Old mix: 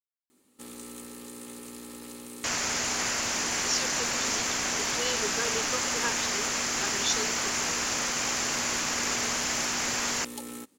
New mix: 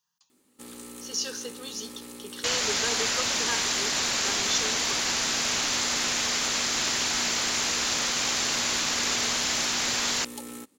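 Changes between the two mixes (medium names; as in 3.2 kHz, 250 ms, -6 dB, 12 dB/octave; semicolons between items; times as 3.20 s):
speech: entry -2.55 s; second sound: add peaking EQ 3.8 kHz +9 dB 0.7 oct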